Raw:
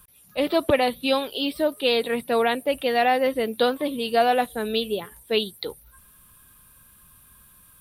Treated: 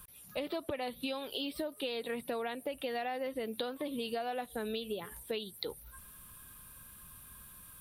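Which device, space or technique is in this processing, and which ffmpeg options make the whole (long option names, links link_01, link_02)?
serial compression, peaks first: -af "acompressor=threshold=-29dB:ratio=6,acompressor=threshold=-38dB:ratio=2"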